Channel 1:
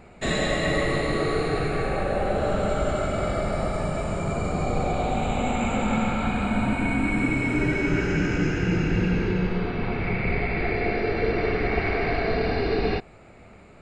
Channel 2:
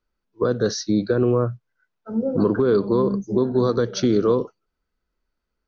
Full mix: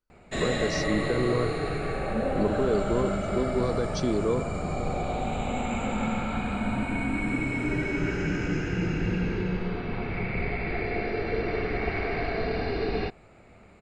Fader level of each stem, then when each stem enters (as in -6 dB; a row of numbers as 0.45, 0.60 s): -4.5, -8.0 dB; 0.10, 0.00 s